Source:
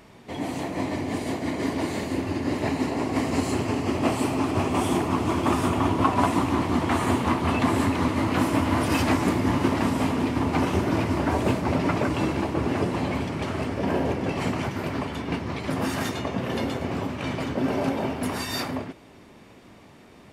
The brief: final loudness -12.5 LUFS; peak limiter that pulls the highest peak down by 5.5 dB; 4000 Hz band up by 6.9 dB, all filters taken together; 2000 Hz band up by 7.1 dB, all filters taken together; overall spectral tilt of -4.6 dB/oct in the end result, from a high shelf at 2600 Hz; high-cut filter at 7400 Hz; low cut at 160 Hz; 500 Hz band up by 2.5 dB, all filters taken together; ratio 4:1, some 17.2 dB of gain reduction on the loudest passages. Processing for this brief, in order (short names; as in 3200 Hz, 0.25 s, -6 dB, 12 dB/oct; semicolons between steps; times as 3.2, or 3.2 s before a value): HPF 160 Hz; LPF 7400 Hz; bell 500 Hz +3 dB; bell 2000 Hz +6 dB; high shelf 2600 Hz +3 dB; bell 4000 Hz +4.5 dB; compressor 4:1, threshold -37 dBFS; gain +25.5 dB; limiter -2.5 dBFS